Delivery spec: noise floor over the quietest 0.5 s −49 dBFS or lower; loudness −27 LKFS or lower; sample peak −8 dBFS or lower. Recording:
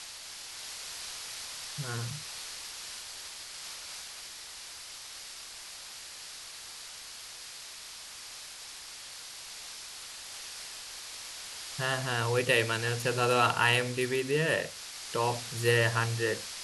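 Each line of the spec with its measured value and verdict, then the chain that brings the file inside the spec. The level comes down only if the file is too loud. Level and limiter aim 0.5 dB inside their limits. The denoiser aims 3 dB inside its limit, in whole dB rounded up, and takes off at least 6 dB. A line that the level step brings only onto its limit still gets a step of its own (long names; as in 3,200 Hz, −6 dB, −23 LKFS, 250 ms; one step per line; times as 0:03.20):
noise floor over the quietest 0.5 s −46 dBFS: out of spec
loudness −33.0 LKFS: in spec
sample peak −11.0 dBFS: in spec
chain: broadband denoise 6 dB, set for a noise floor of −46 dBFS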